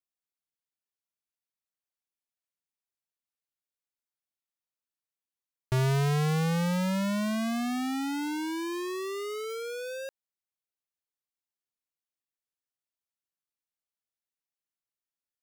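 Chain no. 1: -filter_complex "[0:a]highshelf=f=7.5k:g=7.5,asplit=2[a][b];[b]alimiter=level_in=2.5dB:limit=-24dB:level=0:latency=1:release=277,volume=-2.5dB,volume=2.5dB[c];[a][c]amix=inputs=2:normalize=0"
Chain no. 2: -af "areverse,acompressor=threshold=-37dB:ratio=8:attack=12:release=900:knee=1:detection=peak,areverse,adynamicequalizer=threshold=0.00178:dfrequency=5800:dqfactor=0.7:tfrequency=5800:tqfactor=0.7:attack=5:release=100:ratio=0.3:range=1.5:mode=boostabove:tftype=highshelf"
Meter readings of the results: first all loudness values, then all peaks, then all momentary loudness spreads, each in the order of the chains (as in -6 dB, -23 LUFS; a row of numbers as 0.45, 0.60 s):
-24.5, -37.0 LUFS; -14.5, -32.5 dBFS; 7, 2 LU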